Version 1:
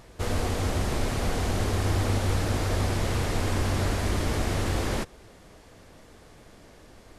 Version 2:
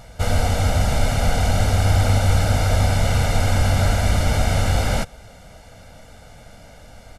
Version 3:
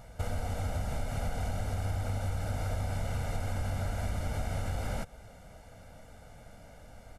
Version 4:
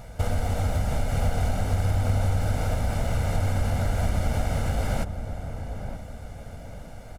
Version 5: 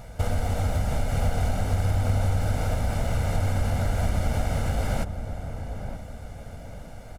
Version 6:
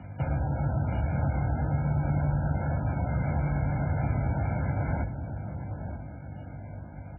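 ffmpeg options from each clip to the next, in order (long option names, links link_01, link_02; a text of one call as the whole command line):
ffmpeg -i in.wav -af "aecho=1:1:1.4:0.78,volume=5dB" out.wav
ffmpeg -i in.wav -af "equalizer=frequency=4200:width_type=o:width=1.8:gain=-6,acompressor=threshold=-22dB:ratio=6,volume=-7.5dB" out.wav
ffmpeg -i in.wav -filter_complex "[0:a]asplit=2[link_01][link_02];[link_02]acrusher=samples=25:mix=1:aa=0.000001:lfo=1:lforange=15:lforate=2.9,volume=-11.5dB[link_03];[link_01][link_03]amix=inputs=2:normalize=0,asplit=2[link_04][link_05];[link_05]adelay=923,lowpass=frequency=1000:poles=1,volume=-8dB,asplit=2[link_06][link_07];[link_07]adelay=923,lowpass=frequency=1000:poles=1,volume=0.4,asplit=2[link_08][link_09];[link_09]adelay=923,lowpass=frequency=1000:poles=1,volume=0.4,asplit=2[link_10][link_11];[link_11]adelay=923,lowpass=frequency=1000:poles=1,volume=0.4,asplit=2[link_12][link_13];[link_13]adelay=923,lowpass=frequency=1000:poles=1,volume=0.4[link_14];[link_04][link_06][link_08][link_10][link_12][link_14]amix=inputs=6:normalize=0,volume=6.5dB" out.wav
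ffmpeg -i in.wav -af anull out.wav
ffmpeg -i in.wav -af "aeval=exprs='val(0)+0.01*(sin(2*PI*50*n/s)+sin(2*PI*2*50*n/s)/2+sin(2*PI*3*50*n/s)/3+sin(2*PI*4*50*n/s)/4+sin(2*PI*5*50*n/s)/5)':channel_layout=same,afreqshift=50,volume=-3.5dB" -ar 11025 -c:a libmp3lame -b:a 8k out.mp3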